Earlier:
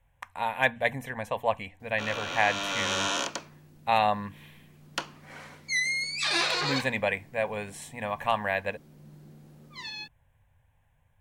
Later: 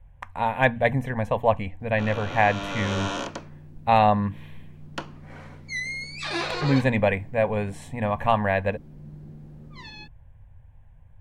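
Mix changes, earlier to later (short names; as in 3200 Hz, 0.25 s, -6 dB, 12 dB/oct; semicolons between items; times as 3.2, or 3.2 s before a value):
speech +4.5 dB; master: add tilt -3 dB/oct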